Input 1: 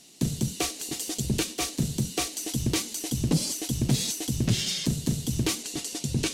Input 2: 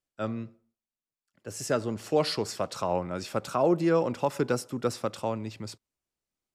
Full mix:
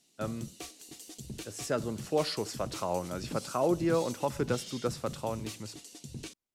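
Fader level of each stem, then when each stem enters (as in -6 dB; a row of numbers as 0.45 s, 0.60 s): -15.5 dB, -4.0 dB; 0.00 s, 0.00 s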